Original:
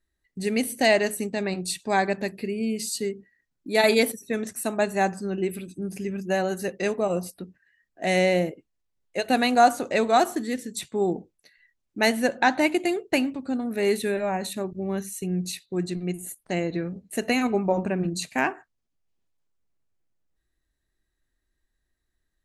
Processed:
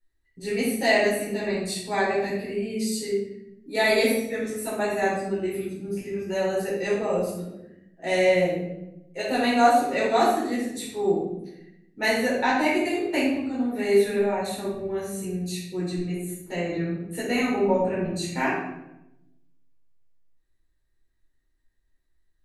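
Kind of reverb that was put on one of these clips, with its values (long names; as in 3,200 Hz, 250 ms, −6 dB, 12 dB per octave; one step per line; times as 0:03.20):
rectangular room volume 270 cubic metres, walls mixed, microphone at 4.4 metres
level −12 dB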